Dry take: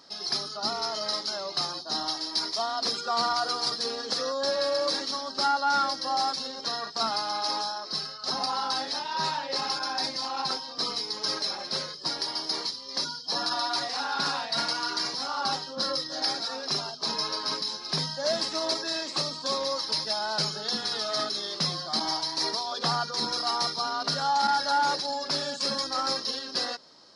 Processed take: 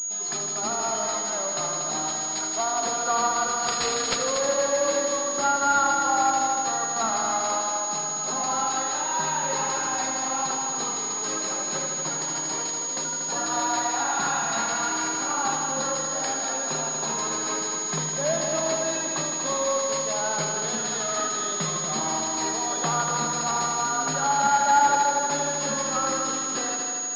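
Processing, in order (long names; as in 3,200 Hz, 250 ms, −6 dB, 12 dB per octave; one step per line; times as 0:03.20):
0:03.68–0:04.16: high-shelf EQ 2,400 Hz +12 dB
echo machine with several playback heads 79 ms, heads all three, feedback 65%, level −9 dB
switching amplifier with a slow clock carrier 6,700 Hz
level +2 dB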